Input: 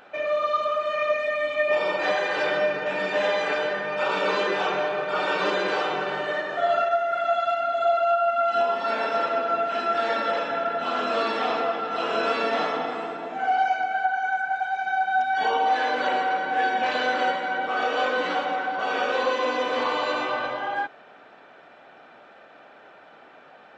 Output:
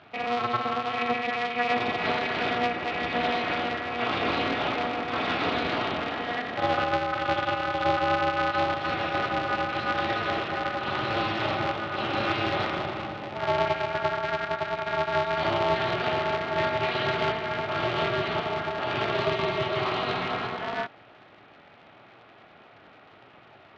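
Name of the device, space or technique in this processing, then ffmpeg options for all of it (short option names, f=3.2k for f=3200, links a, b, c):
ring modulator pedal into a guitar cabinet: -af "aeval=exprs='val(0)*sgn(sin(2*PI*120*n/s))':c=same,highpass=88,equalizer=f=110:t=q:w=4:g=6,equalizer=f=500:t=q:w=4:g=-7,equalizer=f=960:t=q:w=4:g=-6,equalizer=f=1.6k:t=q:w=4:g=-6,lowpass=f=4.2k:w=0.5412,lowpass=f=4.2k:w=1.3066"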